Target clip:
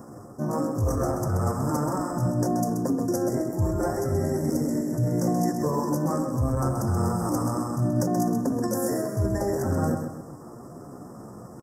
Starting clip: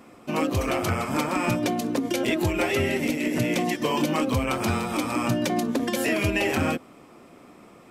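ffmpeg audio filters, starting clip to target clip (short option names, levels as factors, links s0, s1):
-af "equalizer=f=125:t=o:w=1:g=10,equalizer=f=250:t=o:w=1:g=-3,equalizer=f=2000:t=o:w=1:g=-11,areverse,acompressor=threshold=0.0355:ratio=12,areverse,atempo=0.68,asuperstop=centerf=3100:order=12:qfactor=0.92,aecho=1:1:130|260|390|520|650:0.447|0.174|0.0679|0.0265|0.0103,volume=2.24"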